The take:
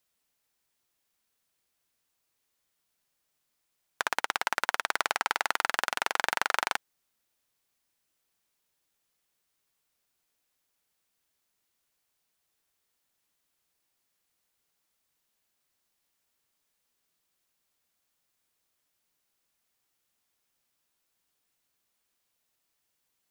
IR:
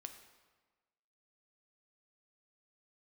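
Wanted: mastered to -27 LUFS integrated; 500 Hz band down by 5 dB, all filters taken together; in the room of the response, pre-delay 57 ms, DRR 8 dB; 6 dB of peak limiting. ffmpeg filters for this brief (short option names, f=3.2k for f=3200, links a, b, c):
-filter_complex "[0:a]equalizer=f=500:t=o:g=-7,alimiter=limit=-11.5dB:level=0:latency=1,asplit=2[a][b];[1:a]atrim=start_sample=2205,adelay=57[c];[b][c]afir=irnorm=-1:irlink=0,volume=-3dB[d];[a][d]amix=inputs=2:normalize=0,volume=7.5dB"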